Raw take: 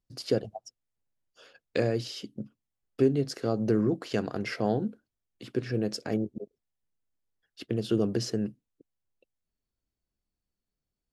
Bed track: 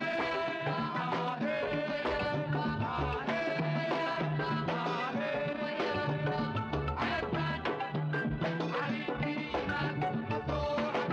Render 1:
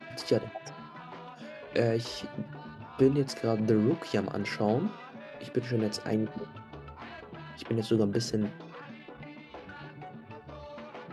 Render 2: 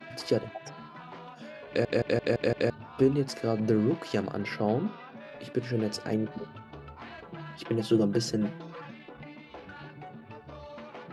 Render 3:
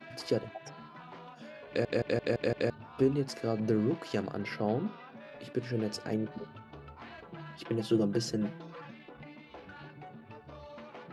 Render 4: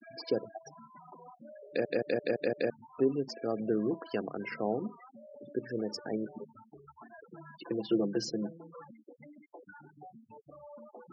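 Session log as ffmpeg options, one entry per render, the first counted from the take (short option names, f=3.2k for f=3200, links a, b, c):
-filter_complex "[1:a]volume=-12dB[a];[0:a][a]amix=inputs=2:normalize=0"
-filter_complex "[0:a]asettb=1/sr,asplit=3[a][b][c];[a]atrim=end=4.344[d];[b]atrim=start=4.34:end=5.17,asetpts=PTS-STARTPTS,afade=t=in:d=0.004:c=qsin,afade=t=out:st=0.826:d=0.004:c=qsin,equalizer=f=7.5k:w=2:g=-15[e];[c]atrim=start=5.166[f];[d][e]acrossfade=d=0.004:c1=hsin:c2=qsin[g];[g][f]acrossfade=d=0.004:c1=qsin:c2=hsin,asettb=1/sr,asplit=3[h][i][j];[h]atrim=end=7.244[k];[i]atrim=start=7.24:end=8.93,asetpts=PTS-STARTPTS,afade=t=in:d=0.004:c=qsin,afade=t=out:st=1.686:d=0.004:c=qsin,aecho=1:1:5.9:0.65,atrim=end_sample=74529[l];[j]atrim=start=8.926[m];[k][l]acrossfade=d=0.004:c1=hsin:c2=qsin[n];[n][m]acrossfade=d=0.004:c1=qsin:c2=hsin,asplit=7[o][p][q][r][s][t][u];[o]atrim=end=1.852[v];[p]atrim=start=1.678:end=1.852[w];[q]atrim=start=1.678:end=1.852[x];[r]atrim=start=1.678:end=1.852[y];[s]atrim=start=1.678:end=1.852[z];[t]atrim=start=1.678:end=1.852[aa];[u]atrim=start=2.698[ab];[v][w]acrossfade=d=0.004:c1=hsin:c2=hsin[ac];[ac][x]acrossfade=d=0.004:c1=hsin:c2=hsin[ad];[ad][y]acrossfade=d=0.004:c1=hsin:c2=hsin[ae];[ae][z]acrossfade=d=0.004:c1=hsin:c2=hsin[af];[af][aa]acrossfade=d=0.004:c1=hsin:c2=hsin[ag];[ag][ab]acrossfade=d=0.004:c1=hsin:c2=hsin"
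-af "volume=-3.5dB"
-af "afftfilt=real='re*gte(hypot(re,im),0.0141)':imag='im*gte(hypot(re,im),0.0141)':win_size=1024:overlap=0.75,highpass=220"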